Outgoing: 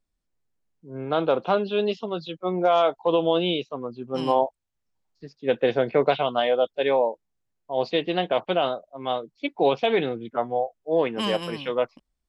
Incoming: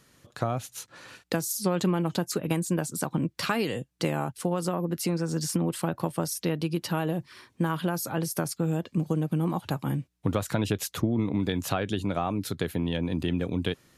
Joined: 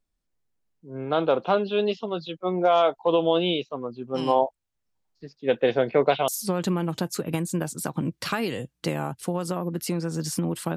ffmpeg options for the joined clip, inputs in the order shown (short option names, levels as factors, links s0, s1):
-filter_complex "[0:a]apad=whole_dur=10.76,atrim=end=10.76,atrim=end=6.282[s0];[1:a]atrim=start=1.448:end=5.93[s1];[s0][s1]acrossfade=d=0.004:c1=hsin:c2=hsin"